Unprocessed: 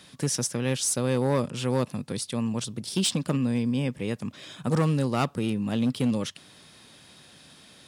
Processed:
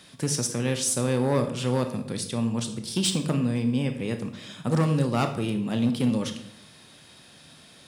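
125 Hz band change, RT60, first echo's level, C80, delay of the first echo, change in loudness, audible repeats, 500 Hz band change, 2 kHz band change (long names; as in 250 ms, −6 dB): +1.5 dB, 0.70 s, no echo audible, 13.0 dB, no echo audible, +1.0 dB, no echo audible, +1.0 dB, +1.0 dB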